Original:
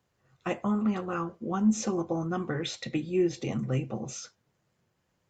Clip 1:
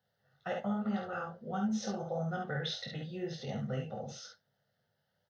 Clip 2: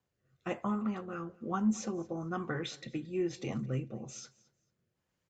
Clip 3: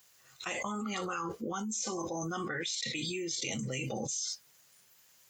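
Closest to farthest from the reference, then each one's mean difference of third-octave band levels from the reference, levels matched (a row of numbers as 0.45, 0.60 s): 2, 1, 3; 2.0, 5.0, 8.0 dB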